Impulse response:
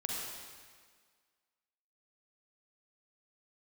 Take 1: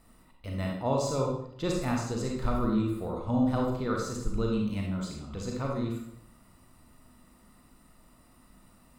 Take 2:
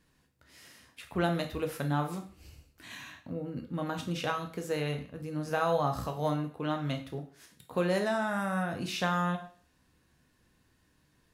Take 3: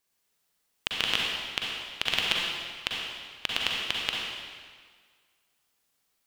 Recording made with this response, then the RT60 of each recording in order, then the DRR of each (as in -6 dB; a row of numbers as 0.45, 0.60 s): 3; 0.70, 0.45, 1.7 s; -0.5, 4.0, -3.0 dB